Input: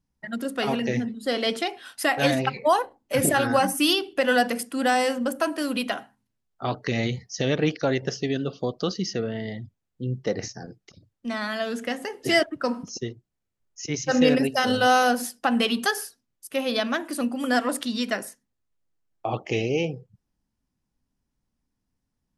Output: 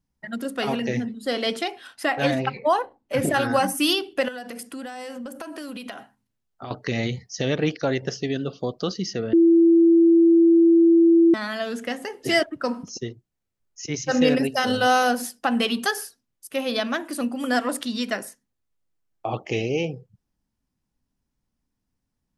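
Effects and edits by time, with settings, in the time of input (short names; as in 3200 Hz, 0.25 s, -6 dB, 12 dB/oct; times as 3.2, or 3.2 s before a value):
1.87–3.34 LPF 3300 Hz 6 dB/oct
4.28–6.71 compressor 12:1, threshold -31 dBFS
9.33–11.34 bleep 334 Hz -11.5 dBFS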